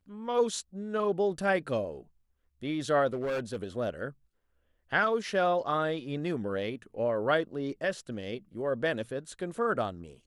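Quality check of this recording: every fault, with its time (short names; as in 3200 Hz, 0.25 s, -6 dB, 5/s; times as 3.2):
3.13–3.56 clipped -28.5 dBFS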